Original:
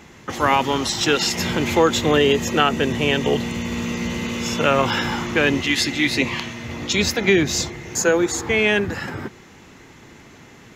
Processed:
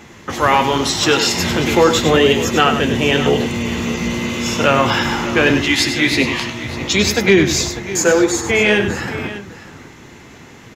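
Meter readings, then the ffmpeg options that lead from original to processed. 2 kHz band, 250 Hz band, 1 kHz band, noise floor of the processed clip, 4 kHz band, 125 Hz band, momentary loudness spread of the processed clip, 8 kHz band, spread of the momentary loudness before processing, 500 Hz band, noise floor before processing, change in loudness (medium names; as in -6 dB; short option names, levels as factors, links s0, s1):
+4.5 dB, +4.5 dB, +4.5 dB, -40 dBFS, +4.5 dB, +5.0 dB, 8 LU, +5.0 dB, 9 LU, +4.5 dB, -46 dBFS, +4.5 dB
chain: -af "flanger=delay=8.3:depth=8.5:regen=-50:speed=0.84:shape=sinusoidal,acontrast=76,aecho=1:1:99|598:0.355|0.188,volume=1.19"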